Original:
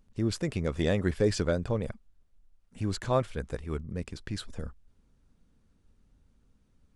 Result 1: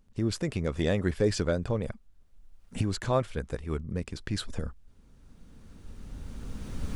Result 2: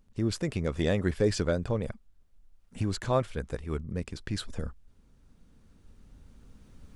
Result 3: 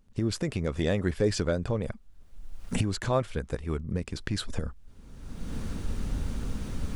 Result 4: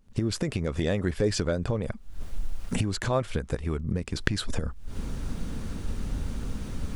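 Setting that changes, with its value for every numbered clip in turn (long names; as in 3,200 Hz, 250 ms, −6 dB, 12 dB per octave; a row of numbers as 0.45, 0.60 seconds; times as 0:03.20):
camcorder AGC, rising by: 13, 5.3, 32, 83 dB per second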